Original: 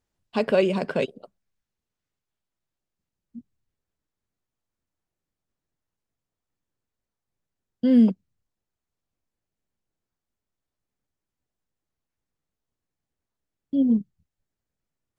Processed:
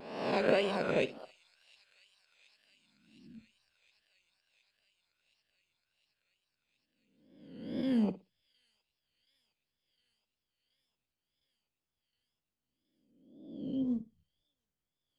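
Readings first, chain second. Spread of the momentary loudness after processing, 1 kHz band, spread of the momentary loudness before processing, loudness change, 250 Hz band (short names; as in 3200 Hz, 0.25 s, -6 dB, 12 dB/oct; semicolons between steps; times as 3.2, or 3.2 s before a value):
19 LU, n/a, 12 LU, -10.0 dB, -12.5 dB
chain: spectral swells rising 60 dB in 1.02 s; thin delay 0.716 s, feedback 75%, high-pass 4000 Hz, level -17 dB; wow and flutter 99 cents; harmonic-percussive split harmonic -9 dB; flutter echo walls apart 10.2 m, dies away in 0.23 s; gain -5 dB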